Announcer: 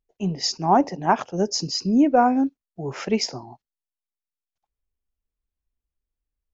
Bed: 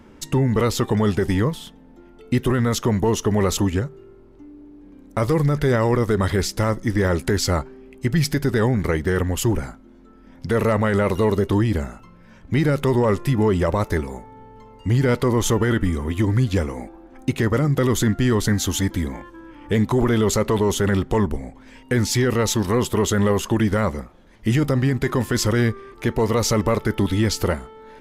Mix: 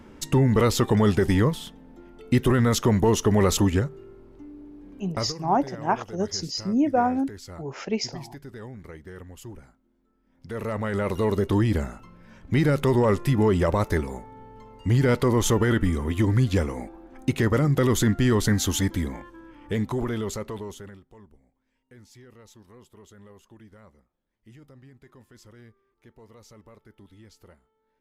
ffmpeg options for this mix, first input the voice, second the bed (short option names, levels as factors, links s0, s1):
-filter_complex "[0:a]adelay=4800,volume=0.596[s0];[1:a]volume=8.41,afade=t=out:st=4.99:d=0.35:silence=0.0944061,afade=t=in:st=10.28:d=1.42:silence=0.112202,afade=t=out:st=18.71:d=2.29:silence=0.0354813[s1];[s0][s1]amix=inputs=2:normalize=0"